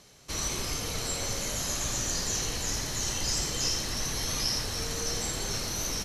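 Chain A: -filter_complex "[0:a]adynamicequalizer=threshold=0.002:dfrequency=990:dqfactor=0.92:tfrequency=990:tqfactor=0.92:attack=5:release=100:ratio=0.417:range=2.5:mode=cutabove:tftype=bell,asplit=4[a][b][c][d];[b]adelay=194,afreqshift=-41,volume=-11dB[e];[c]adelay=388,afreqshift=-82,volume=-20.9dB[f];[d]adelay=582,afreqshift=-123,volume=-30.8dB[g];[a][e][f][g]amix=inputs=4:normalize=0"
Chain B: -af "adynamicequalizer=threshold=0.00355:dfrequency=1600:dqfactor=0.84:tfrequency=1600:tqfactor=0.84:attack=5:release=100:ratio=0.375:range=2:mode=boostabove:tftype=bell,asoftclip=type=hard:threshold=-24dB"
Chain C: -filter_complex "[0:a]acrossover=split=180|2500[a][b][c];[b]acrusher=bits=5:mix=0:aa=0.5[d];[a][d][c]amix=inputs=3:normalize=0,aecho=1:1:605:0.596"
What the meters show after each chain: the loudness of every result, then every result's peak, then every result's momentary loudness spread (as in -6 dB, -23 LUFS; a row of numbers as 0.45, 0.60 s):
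-30.0, -29.5, -29.0 LUFS; -16.0, -24.0, -14.5 dBFS; 3, 3, 4 LU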